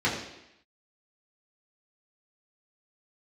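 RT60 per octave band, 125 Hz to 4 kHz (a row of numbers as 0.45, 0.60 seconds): 0.70, 0.85, 0.80, 0.85, 0.90, 0.90 seconds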